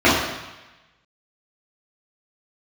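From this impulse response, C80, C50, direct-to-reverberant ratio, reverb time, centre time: 4.0 dB, 1.0 dB, −10.5 dB, 1.1 s, 66 ms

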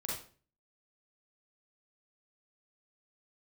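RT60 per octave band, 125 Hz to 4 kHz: 0.60, 0.50, 0.45, 0.40, 0.35, 0.35 seconds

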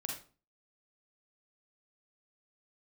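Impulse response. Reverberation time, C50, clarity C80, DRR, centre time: 0.40 s, 3.5 dB, 9.5 dB, −0.5 dB, 33 ms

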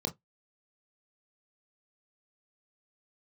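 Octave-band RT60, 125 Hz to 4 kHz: 0.15, 0.15, 0.15, 0.15, 0.10, 0.10 seconds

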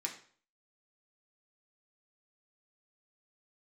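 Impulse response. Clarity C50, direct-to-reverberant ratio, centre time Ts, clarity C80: 9.5 dB, −1.0 dB, 16 ms, 13.0 dB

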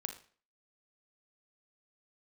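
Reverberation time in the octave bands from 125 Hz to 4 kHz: 0.40, 0.45, 0.45, 0.45, 0.45, 0.40 seconds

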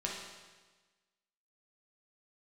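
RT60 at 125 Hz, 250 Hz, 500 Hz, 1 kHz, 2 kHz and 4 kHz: 1.4, 1.3, 1.3, 1.3, 1.3, 1.3 seconds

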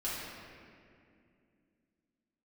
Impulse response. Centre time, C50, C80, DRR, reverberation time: 136 ms, −2.5 dB, 0.0 dB, −9.5 dB, 2.4 s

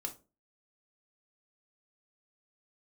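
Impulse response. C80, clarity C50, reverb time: 21.5 dB, 14.5 dB, 0.30 s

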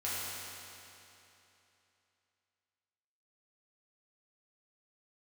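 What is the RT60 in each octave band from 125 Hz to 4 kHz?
3.0, 3.0, 3.0, 3.0, 2.9, 2.8 seconds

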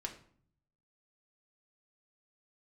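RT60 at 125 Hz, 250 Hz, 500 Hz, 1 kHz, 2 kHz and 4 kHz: 1.1, 0.85, 0.55, 0.55, 0.45, 0.40 seconds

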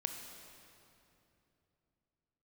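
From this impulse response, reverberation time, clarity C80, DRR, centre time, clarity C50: 2.9 s, 6.0 dB, 4.0 dB, 62 ms, 5.0 dB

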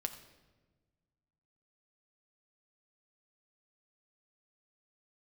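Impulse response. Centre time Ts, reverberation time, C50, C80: 13 ms, non-exponential decay, 10.5 dB, 12.0 dB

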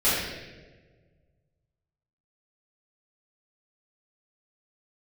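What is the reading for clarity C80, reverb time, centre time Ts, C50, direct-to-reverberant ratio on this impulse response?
1.5 dB, 1.4 s, 90 ms, −1.0 dB, −12.0 dB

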